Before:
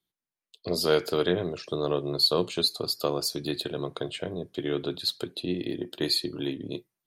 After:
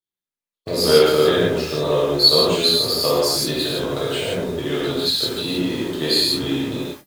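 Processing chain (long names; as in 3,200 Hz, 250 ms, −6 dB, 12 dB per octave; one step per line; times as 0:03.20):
converter with a step at zero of −36.5 dBFS
noise gate −36 dBFS, range −58 dB
reverb whose tail is shaped and stops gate 200 ms flat, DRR −7.5 dB
level +1 dB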